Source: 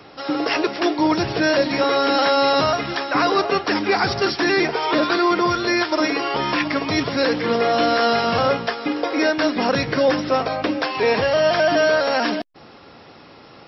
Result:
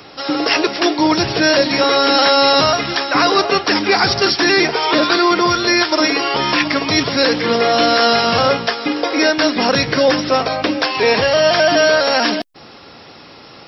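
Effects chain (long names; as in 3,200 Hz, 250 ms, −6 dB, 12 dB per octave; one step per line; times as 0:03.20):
high-shelf EQ 3,600 Hz +10 dB
level +3.5 dB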